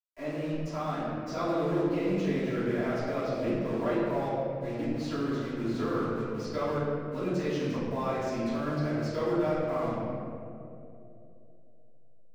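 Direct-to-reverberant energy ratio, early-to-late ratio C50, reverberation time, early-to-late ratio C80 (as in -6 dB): -19.0 dB, -2.5 dB, 2.9 s, -0.5 dB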